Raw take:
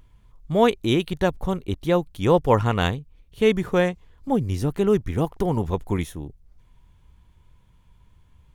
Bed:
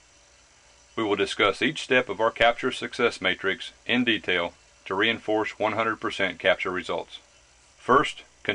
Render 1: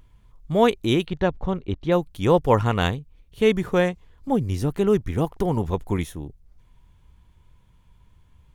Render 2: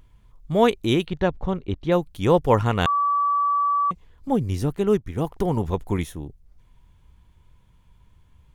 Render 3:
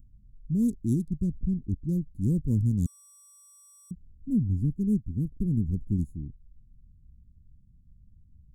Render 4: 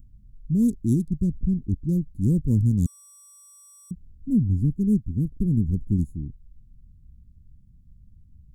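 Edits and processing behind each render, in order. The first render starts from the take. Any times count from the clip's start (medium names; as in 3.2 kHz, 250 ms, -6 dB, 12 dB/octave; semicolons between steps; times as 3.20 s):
1.06–1.92 s: distance through air 150 m
2.86–3.91 s: bleep 1.15 kHz -18 dBFS; 4.76–5.25 s: upward expansion, over -36 dBFS
local Wiener filter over 15 samples; elliptic band-stop 240–7700 Hz, stop band 50 dB
trim +4.5 dB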